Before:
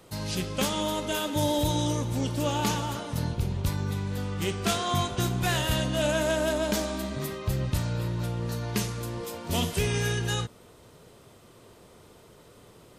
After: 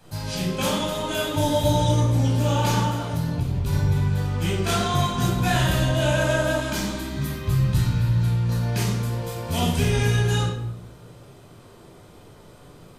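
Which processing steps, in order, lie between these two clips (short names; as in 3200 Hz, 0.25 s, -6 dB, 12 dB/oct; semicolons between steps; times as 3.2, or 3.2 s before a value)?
reverb RT60 0.75 s, pre-delay 12 ms, DRR -5 dB; 2.89–3.73 compressor 2:1, threshold -19 dBFS, peak gain reduction 4.5 dB; 6.6–8.49 bell 580 Hz -10 dB 0.82 oct; gain -4 dB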